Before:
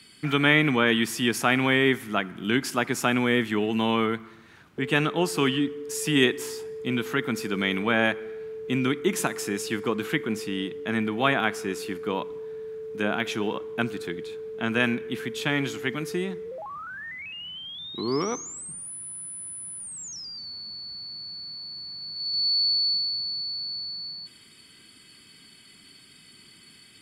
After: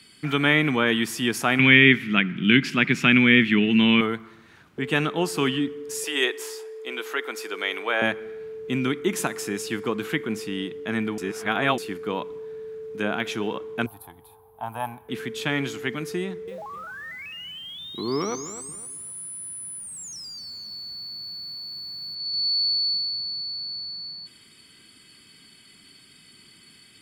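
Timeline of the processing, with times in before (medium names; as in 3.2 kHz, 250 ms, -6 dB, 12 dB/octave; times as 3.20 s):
1.59–4.01 s: FFT filter 100 Hz 0 dB, 160 Hz +13 dB, 760 Hz -9 dB, 1.3 kHz 0 dB, 2.4 kHz +13 dB, 9.2 kHz -12 dB
6.04–8.02 s: high-pass 400 Hz 24 dB/octave
11.18–11.78 s: reverse
13.86–15.09 s: FFT filter 100 Hz 0 dB, 190 Hz -19 dB, 280 Hz -15 dB, 410 Hz -23 dB, 860 Hz +13 dB, 1.4 kHz -13 dB, 2.1 kHz -20 dB, 3.2 kHz -16 dB, 7.1 kHz -19 dB, 11 kHz +12 dB
16.22–22.15 s: bit-crushed delay 256 ms, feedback 35%, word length 8-bit, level -11.5 dB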